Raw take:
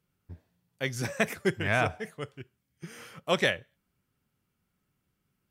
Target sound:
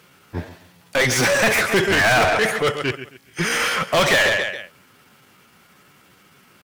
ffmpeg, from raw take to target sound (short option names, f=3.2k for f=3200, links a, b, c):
-filter_complex "[0:a]aecho=1:1:113|226|339:0.141|0.041|0.0119,asplit=2[a][b];[b]highpass=f=720:p=1,volume=37dB,asoftclip=type=tanh:threshold=-11dB[c];[a][c]amix=inputs=2:normalize=0,lowpass=f=4.5k:p=1,volume=-6dB,atempo=0.83,volume=2dB"